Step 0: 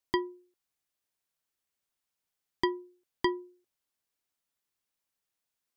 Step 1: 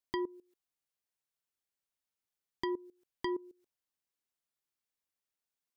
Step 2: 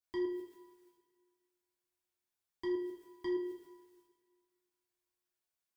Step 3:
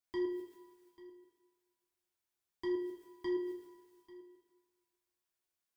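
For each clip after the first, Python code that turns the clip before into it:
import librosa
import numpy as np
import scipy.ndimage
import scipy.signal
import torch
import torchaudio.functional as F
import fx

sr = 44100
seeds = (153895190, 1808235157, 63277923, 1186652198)

y1 = fx.level_steps(x, sr, step_db=20)
y1 = y1 * librosa.db_to_amplitude(7.0)
y2 = fx.transient(y1, sr, attack_db=-7, sustain_db=12)
y2 = fx.rev_double_slope(y2, sr, seeds[0], early_s=0.44, late_s=1.9, knee_db=-18, drr_db=-5.5)
y2 = y2 * librosa.db_to_amplitude(-6.0)
y3 = y2 + 10.0 ** (-19.0 / 20.0) * np.pad(y2, (int(841 * sr / 1000.0), 0))[:len(y2)]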